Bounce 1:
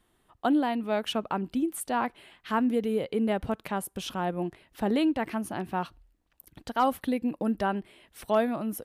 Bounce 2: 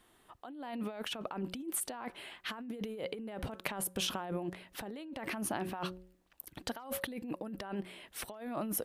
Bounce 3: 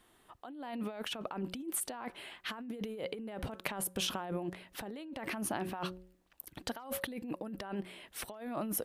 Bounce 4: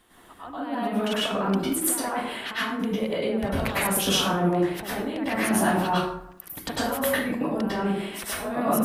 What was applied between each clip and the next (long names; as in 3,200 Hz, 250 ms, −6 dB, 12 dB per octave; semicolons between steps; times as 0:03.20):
low-shelf EQ 210 Hz −8.5 dB; hum removal 183.5 Hz, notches 3; compressor whose output falls as the input rises −38 dBFS, ratio −1; level −2 dB
no processing that can be heard
dense smooth reverb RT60 0.78 s, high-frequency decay 0.5×, pre-delay 90 ms, DRR −9.5 dB; level +4.5 dB